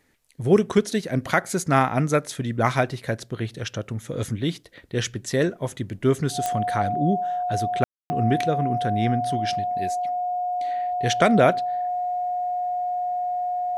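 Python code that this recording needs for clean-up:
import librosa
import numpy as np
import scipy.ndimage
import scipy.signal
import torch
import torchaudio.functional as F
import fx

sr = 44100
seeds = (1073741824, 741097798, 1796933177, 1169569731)

y = fx.fix_declick_ar(x, sr, threshold=10.0)
y = fx.notch(y, sr, hz=720.0, q=30.0)
y = fx.fix_ambience(y, sr, seeds[0], print_start_s=0.0, print_end_s=0.5, start_s=7.84, end_s=8.1)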